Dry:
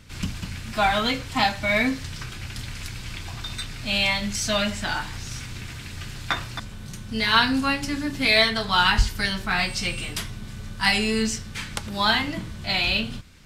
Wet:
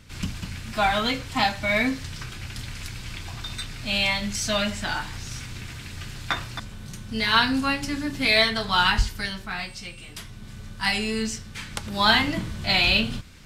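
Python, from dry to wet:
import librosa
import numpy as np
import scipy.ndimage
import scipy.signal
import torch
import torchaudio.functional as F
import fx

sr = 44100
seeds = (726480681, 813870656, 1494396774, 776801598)

y = fx.gain(x, sr, db=fx.line((8.87, -1.0), (9.96, -12.0), (10.51, -3.5), (11.61, -3.5), (12.16, 3.0)))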